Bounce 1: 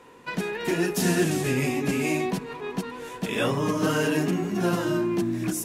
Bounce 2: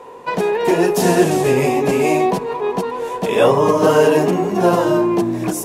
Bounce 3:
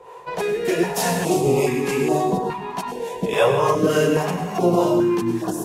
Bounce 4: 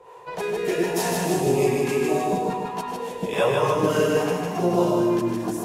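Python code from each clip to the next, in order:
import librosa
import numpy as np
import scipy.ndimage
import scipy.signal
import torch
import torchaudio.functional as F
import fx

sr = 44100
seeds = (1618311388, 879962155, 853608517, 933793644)

y1 = fx.band_shelf(x, sr, hz=650.0, db=10.5, octaves=1.7)
y1 = y1 * 10.0 ** (5.0 / 20.0)
y2 = fx.harmonic_tremolo(y1, sr, hz=3.4, depth_pct=70, crossover_hz=450.0)
y2 = fx.rev_plate(y2, sr, seeds[0], rt60_s=0.76, hf_ratio=0.8, predelay_ms=85, drr_db=6.0)
y2 = fx.filter_held_notch(y2, sr, hz=2.4, low_hz=250.0, high_hz=2300.0)
y3 = fx.echo_feedback(y2, sr, ms=154, feedback_pct=47, wet_db=-4.0)
y3 = y3 * 10.0 ** (-4.5 / 20.0)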